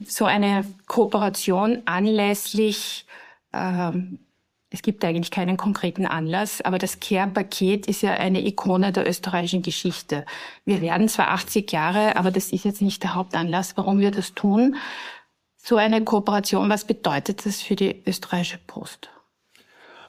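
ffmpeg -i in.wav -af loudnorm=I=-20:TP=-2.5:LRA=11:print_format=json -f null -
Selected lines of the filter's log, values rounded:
"input_i" : "-22.9",
"input_tp" : "-3.9",
"input_lra" : "5.5",
"input_thresh" : "-33.7",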